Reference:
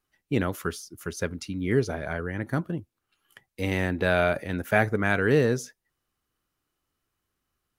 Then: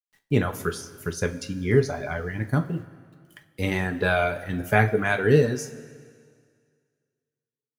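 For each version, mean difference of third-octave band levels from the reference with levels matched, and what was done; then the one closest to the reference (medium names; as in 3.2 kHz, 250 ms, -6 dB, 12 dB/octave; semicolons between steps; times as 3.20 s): 4.5 dB: reverb removal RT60 1.7 s; bass shelf 76 Hz +10 dB; bit crusher 11-bit; two-slope reverb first 0.23 s, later 2 s, from -18 dB, DRR 4 dB; trim +1.5 dB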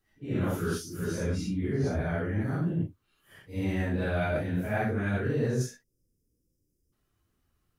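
7.0 dB: phase randomisation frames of 200 ms; spectral selection erased 5.83–6.93 s, 560–4800 Hz; bass shelf 380 Hz +10 dB; reverse; compression 6:1, threshold -26 dBFS, peak gain reduction 14.5 dB; reverse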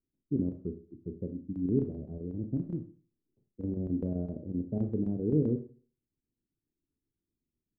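14.5 dB: inverse Chebyshev low-pass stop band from 1.9 kHz, stop band 80 dB; bass shelf 250 Hz -11.5 dB; square tremolo 7.7 Hz, depth 65%, duty 80%; Schroeder reverb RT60 0.41 s, combs from 26 ms, DRR 6.5 dB; trim +4.5 dB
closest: first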